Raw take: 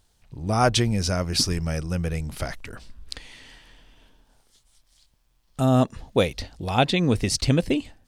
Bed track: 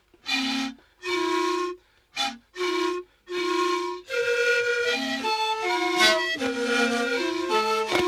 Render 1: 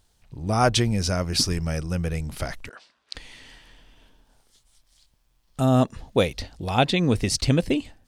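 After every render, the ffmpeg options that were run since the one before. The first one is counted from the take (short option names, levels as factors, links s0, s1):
-filter_complex "[0:a]asettb=1/sr,asplit=3[s0][s1][s2];[s0]atrim=end=2.694[s3];[s1]atrim=start=2.69:end=3.15,asetpts=PTS-STARTPTS,afade=t=in:d=0.004:c=qsin,afade=t=out:st=0.456:d=0.004:c=qsin,highpass=630,lowpass=5500[s4];[s2]atrim=start=3.146[s5];[s3][s4]acrossfade=d=0.004:c1=hsin:c2=qsin[s6];[s6][s5]acrossfade=d=0.004:c1=qsin:c2=hsin"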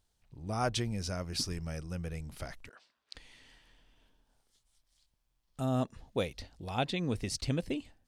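-af "volume=0.251"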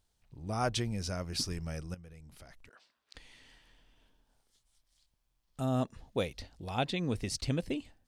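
-filter_complex "[0:a]asettb=1/sr,asplit=3[s0][s1][s2];[s0]atrim=end=1.944[s3];[s1]atrim=start=1.94:end=3.14,asetpts=PTS-STARTPTS,afade=t=in:d=0.004:c=qsin,afade=t=out:st=1.196:d=0.004:c=qsin,acompressor=threshold=0.00178:ratio=2.5:attack=3.2:release=140:knee=1:detection=peak[s4];[s2]atrim=start=3.136[s5];[s3][s4]acrossfade=d=0.004:c1=hsin:c2=qsin[s6];[s6][s5]acrossfade=d=0.004:c1=qsin:c2=hsin"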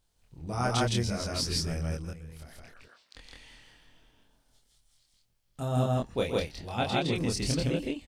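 -filter_complex "[0:a]asplit=2[s0][s1];[s1]adelay=25,volume=0.794[s2];[s0][s2]amix=inputs=2:normalize=0,aecho=1:1:122.4|163.3:0.282|1"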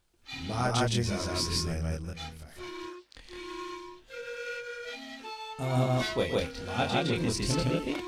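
-filter_complex "[1:a]volume=0.168[s0];[0:a][s0]amix=inputs=2:normalize=0"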